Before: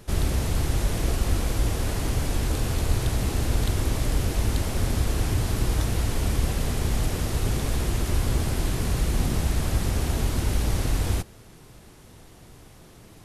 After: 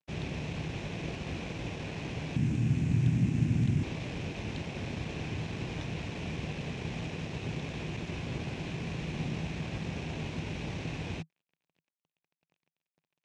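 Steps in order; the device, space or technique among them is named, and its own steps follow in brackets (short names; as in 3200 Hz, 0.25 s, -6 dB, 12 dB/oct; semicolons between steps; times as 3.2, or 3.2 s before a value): blown loudspeaker (crossover distortion -40 dBFS; speaker cabinet 120–5500 Hz, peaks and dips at 160 Hz +9 dB, 1300 Hz -7 dB, 2500 Hz +9 dB, 4700 Hz -6 dB); 2.36–3.83 ten-band EQ 125 Hz +12 dB, 250 Hz +10 dB, 500 Hz -9 dB, 1000 Hz -4 dB, 4000 Hz -8 dB, 8000 Hz +5 dB; gain -7.5 dB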